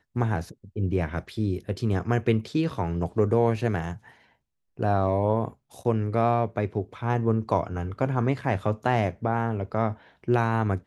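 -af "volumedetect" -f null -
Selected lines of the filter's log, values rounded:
mean_volume: -26.0 dB
max_volume: -8.4 dB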